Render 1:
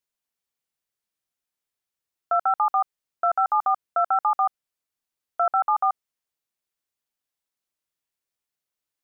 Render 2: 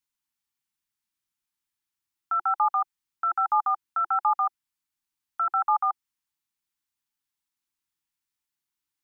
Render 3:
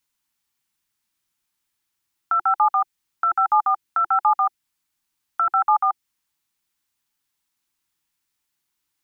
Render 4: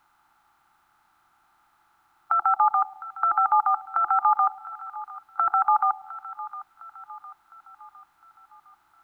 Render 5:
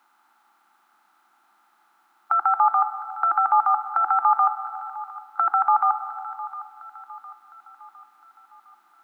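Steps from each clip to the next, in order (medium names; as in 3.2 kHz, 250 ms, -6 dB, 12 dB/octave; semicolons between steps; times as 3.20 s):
elliptic band-stop 350–830 Hz
dynamic bell 1.1 kHz, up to -5 dB, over -36 dBFS, Q 1.3; trim +9 dB
spectral levelling over time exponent 0.6; two-band feedback delay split 830 Hz, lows 108 ms, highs 708 ms, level -15.5 dB; trim -2.5 dB
brick-wall FIR high-pass 180 Hz; on a send at -11 dB: reverberation RT60 1.9 s, pre-delay 87 ms; on the sum: trim +1.5 dB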